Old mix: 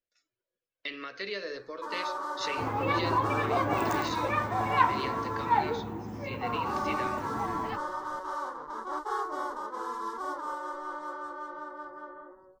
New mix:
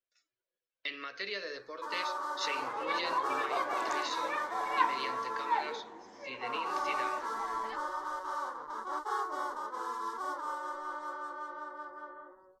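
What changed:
second sound: add loudspeaker in its box 500–7,000 Hz, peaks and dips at 800 Hz −5 dB, 1,300 Hz −8 dB, 2,600 Hz −9 dB
master: add low-shelf EQ 480 Hz −9 dB

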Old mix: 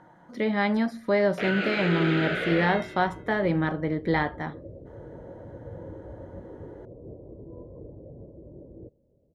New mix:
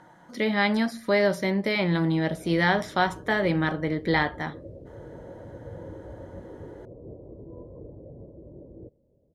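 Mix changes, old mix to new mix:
first sound: muted
master: add high-shelf EQ 2,700 Hz +11.5 dB

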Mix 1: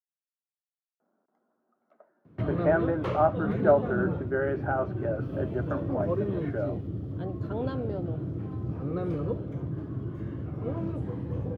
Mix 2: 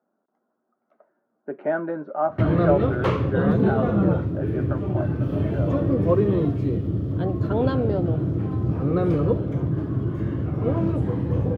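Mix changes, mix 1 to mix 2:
speech: entry −1.00 s
background +9.5 dB

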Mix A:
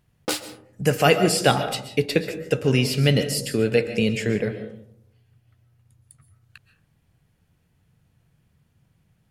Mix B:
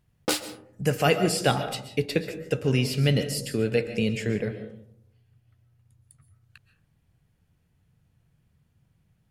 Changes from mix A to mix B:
speech −5.0 dB
master: add low-shelf EQ 140 Hz +4.5 dB

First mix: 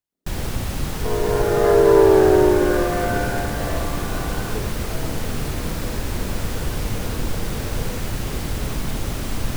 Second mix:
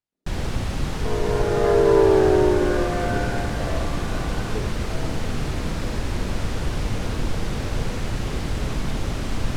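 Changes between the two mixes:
second sound −3.0 dB
master: add high-frequency loss of the air 57 metres

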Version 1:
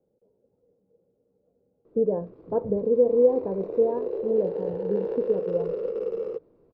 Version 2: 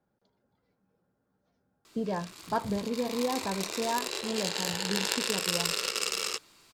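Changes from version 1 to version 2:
background: add bass and treble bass −6 dB, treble 0 dB
master: remove low-pass with resonance 480 Hz, resonance Q 5.9

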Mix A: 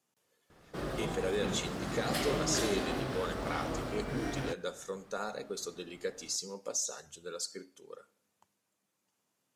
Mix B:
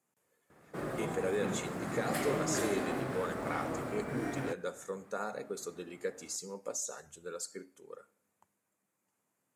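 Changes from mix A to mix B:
background: add high-pass filter 110 Hz 12 dB per octave
master: add flat-topped bell 4,100 Hz −8.5 dB 1.3 octaves

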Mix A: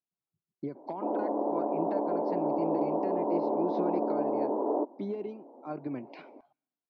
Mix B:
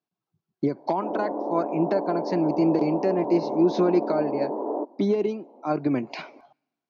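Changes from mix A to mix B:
speech +12.0 dB
master: remove high-frequency loss of the air 210 metres

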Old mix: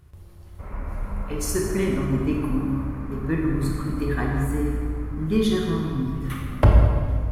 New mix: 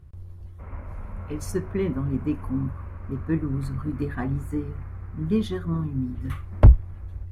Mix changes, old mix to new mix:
speech: add spectral tilt −2 dB per octave
reverb: off

